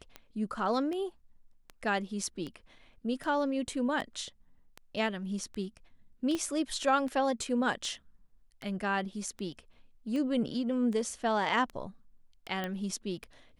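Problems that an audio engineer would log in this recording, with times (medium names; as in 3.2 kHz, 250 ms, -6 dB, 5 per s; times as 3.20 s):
tick 78 rpm -26 dBFS
6.35 s: pop -20 dBFS
12.64 s: pop -21 dBFS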